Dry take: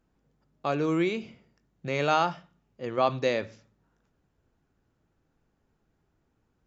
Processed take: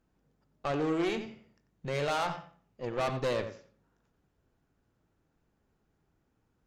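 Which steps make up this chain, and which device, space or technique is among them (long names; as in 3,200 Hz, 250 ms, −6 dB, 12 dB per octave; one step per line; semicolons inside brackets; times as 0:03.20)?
rockabilly slapback (tube saturation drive 29 dB, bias 0.75; tape delay 89 ms, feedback 25%, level −8 dB, low-pass 2,500 Hz)
level +2.5 dB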